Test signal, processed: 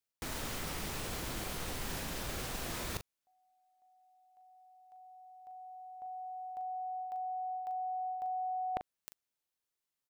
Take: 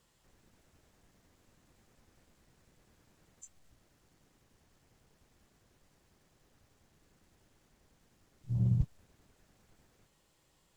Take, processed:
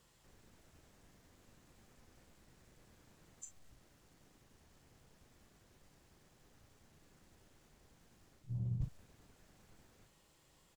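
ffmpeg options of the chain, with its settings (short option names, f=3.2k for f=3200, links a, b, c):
-filter_complex "[0:a]areverse,acompressor=threshold=-38dB:ratio=6,areverse,asplit=2[a][b];[b]adelay=40,volume=-9.5dB[c];[a][c]amix=inputs=2:normalize=0,volume=1.5dB"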